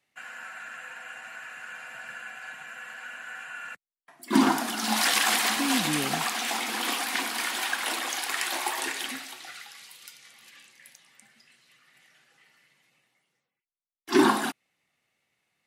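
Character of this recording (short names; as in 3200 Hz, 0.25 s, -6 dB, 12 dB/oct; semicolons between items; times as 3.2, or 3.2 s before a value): noise floor -87 dBFS; spectral tilt -3.0 dB/oct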